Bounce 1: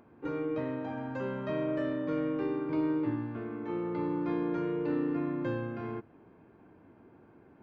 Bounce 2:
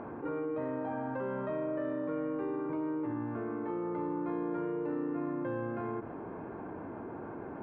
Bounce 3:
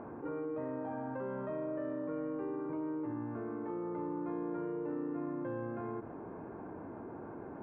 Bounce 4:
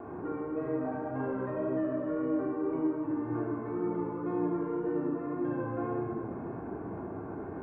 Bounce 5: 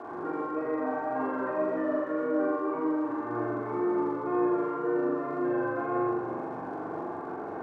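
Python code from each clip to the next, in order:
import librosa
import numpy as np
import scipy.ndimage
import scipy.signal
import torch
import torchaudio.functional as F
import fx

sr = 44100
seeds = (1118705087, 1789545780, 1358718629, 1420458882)

y1 = scipy.signal.sosfilt(scipy.signal.butter(2, 1200.0, 'lowpass', fs=sr, output='sos'), x)
y1 = fx.low_shelf(y1, sr, hz=400.0, db=-10.5)
y1 = fx.env_flatten(y1, sr, amount_pct=70)
y2 = fx.high_shelf(y1, sr, hz=2900.0, db=-11.5)
y2 = y2 * 10.0 ** (-3.0 / 20.0)
y3 = fx.vibrato(y2, sr, rate_hz=1.9, depth_cents=34.0)
y3 = fx.room_shoebox(y3, sr, seeds[0], volume_m3=3100.0, walls='mixed', distance_m=3.4)
y4 = fx.dmg_crackle(y3, sr, seeds[1], per_s=170.0, level_db=-52.0)
y4 = fx.bandpass_q(y4, sr, hz=1200.0, q=0.63)
y4 = fx.room_flutter(y4, sr, wall_m=7.2, rt60_s=0.84)
y4 = y4 * 10.0 ** (6.0 / 20.0)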